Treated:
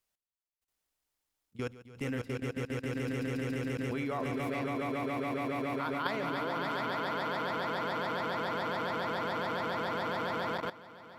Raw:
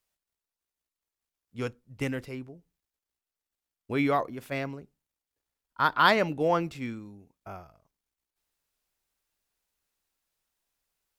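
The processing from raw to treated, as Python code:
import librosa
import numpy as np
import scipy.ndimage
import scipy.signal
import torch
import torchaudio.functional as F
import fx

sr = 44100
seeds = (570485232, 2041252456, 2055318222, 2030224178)

y = fx.echo_swell(x, sr, ms=140, loudest=8, wet_db=-4)
y = fx.level_steps(y, sr, step_db=17)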